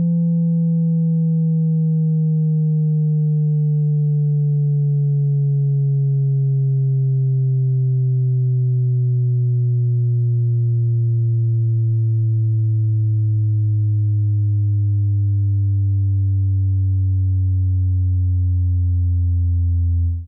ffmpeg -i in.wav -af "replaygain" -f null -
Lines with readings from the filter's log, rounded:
track_gain = +3.8 dB
track_peak = 0.140